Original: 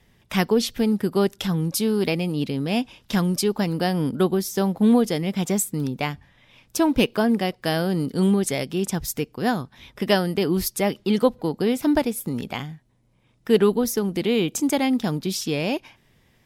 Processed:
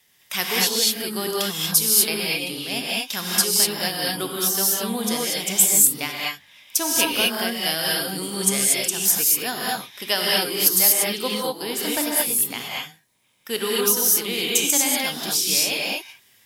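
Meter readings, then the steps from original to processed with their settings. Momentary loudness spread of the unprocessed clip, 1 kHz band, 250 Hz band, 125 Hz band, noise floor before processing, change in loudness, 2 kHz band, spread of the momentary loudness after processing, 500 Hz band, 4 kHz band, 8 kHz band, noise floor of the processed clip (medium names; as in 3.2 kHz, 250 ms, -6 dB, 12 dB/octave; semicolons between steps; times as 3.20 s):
9 LU, -0.5 dB, -9.0 dB, -11.0 dB, -61 dBFS, +3.5 dB, +5.0 dB, 11 LU, -5.0 dB, +9.5 dB, +14.0 dB, -57 dBFS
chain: tilt EQ +4.5 dB/octave; gated-style reverb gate 260 ms rising, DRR -4 dB; trim -5 dB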